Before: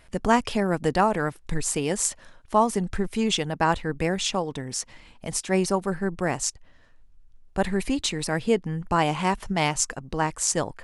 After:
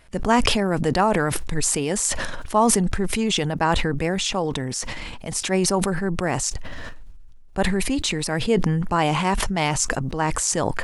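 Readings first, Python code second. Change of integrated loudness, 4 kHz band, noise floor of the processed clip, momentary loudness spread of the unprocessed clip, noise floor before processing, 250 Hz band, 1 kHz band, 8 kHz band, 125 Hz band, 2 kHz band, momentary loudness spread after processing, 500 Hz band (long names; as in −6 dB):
+3.0 dB, +4.5 dB, −39 dBFS, 7 LU, −55 dBFS, +3.5 dB, +2.0 dB, +4.0 dB, +5.0 dB, +3.5 dB, 8 LU, +2.5 dB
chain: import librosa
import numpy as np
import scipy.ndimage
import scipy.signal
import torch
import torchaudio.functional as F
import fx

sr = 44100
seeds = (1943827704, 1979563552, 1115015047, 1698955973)

y = fx.sustainer(x, sr, db_per_s=20.0)
y = y * 10.0 ** (1.0 / 20.0)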